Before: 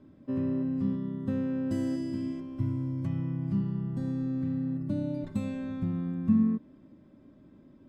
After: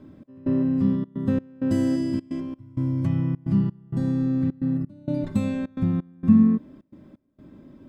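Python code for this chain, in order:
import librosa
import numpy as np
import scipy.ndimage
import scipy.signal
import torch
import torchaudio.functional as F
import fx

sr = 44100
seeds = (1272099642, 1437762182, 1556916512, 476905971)

y = fx.step_gate(x, sr, bpm=130, pattern='xx..xxxxx.', floor_db=-24.0, edge_ms=4.5)
y = F.gain(torch.from_numpy(y), 8.0).numpy()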